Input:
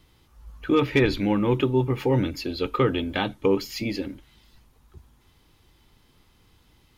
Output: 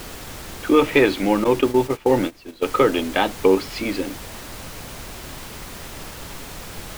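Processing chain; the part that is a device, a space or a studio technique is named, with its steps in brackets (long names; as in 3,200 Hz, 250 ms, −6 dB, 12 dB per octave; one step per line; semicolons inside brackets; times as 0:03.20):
horn gramophone (band-pass filter 270–3,700 Hz; parametric band 680 Hz +4.5 dB 0.55 octaves; tape wow and flutter; pink noise bed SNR 13 dB)
0:01.44–0:02.66: noise gate −27 dBFS, range −17 dB
level +6 dB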